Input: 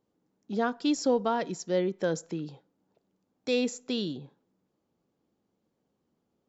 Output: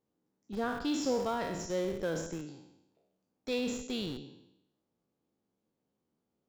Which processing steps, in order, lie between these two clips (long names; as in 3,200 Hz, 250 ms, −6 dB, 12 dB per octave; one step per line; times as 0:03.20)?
peak hold with a decay on every bin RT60 0.84 s
in parallel at −8 dB: comparator with hysteresis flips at −27.5 dBFS
on the sum: level −8 dB